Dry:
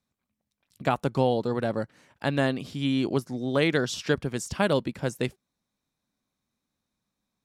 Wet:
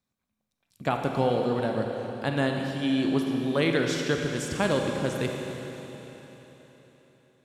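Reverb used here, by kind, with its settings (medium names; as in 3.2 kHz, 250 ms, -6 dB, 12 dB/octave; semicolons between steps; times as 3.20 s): Schroeder reverb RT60 4 s, combs from 33 ms, DRR 2 dB; trim -2 dB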